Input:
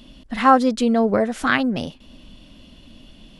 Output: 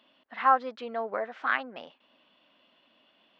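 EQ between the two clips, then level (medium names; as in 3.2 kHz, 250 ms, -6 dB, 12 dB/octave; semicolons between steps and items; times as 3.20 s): high-pass 970 Hz 12 dB/octave; distance through air 130 m; tape spacing loss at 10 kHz 35 dB; 0.0 dB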